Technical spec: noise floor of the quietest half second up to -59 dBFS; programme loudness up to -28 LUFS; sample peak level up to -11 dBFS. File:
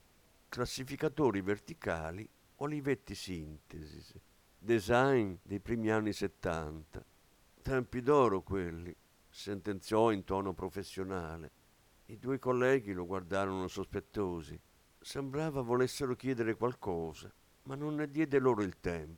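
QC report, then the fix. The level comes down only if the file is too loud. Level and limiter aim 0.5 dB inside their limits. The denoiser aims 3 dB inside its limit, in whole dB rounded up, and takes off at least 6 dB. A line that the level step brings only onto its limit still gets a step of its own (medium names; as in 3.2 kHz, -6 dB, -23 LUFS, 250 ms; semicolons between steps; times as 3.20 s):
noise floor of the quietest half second -67 dBFS: pass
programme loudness -35.0 LUFS: pass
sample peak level -15.5 dBFS: pass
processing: none needed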